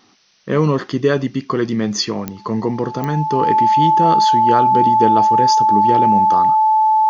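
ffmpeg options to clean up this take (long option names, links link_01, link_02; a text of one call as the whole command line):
ffmpeg -i in.wav -af "adeclick=threshold=4,bandreject=frequency=870:width=30,agate=range=-21dB:threshold=-25dB" out.wav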